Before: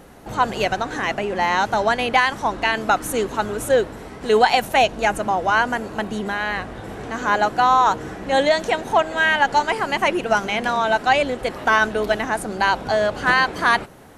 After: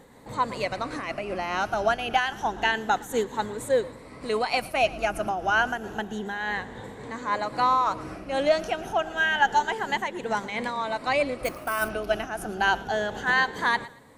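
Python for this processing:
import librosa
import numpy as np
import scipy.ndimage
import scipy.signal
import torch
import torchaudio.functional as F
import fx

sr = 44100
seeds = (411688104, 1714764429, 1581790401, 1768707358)

p1 = fx.spec_ripple(x, sr, per_octave=1.0, drift_hz=0.29, depth_db=9)
p2 = p1 + fx.echo_thinned(p1, sr, ms=115, feedback_pct=32, hz=420.0, wet_db=-19.5, dry=0)
p3 = fx.sample_hold(p2, sr, seeds[0], rate_hz=11000.0, jitter_pct=0, at=(11.44, 11.88), fade=0.02)
p4 = fx.am_noise(p3, sr, seeds[1], hz=5.7, depth_pct=65)
y = p4 * librosa.db_to_amplitude(-5.0)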